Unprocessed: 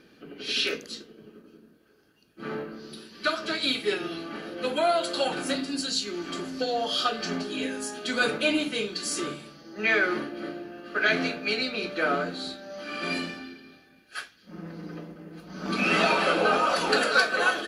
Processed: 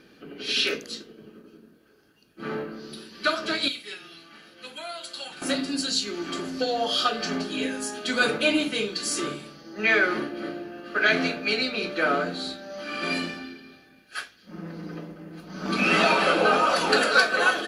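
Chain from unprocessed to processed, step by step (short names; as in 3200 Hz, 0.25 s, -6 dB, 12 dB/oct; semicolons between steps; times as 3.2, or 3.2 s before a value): 3.68–5.42 passive tone stack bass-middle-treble 5-5-5; de-hum 59.4 Hz, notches 12; gain +2.5 dB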